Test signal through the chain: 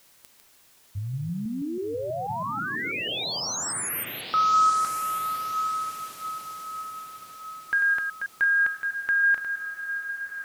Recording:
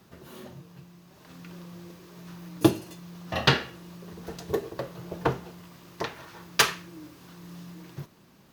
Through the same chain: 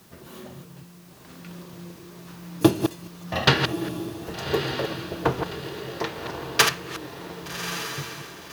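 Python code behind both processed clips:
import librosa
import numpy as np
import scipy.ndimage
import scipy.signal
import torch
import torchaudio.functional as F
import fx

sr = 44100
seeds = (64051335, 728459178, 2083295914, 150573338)

y = fx.reverse_delay(x, sr, ms=162, wet_db=-7.5)
y = fx.echo_diffused(y, sr, ms=1174, feedback_pct=46, wet_db=-8)
y = fx.quant_dither(y, sr, seeds[0], bits=10, dither='triangular')
y = F.gain(torch.from_numpy(y), 2.5).numpy()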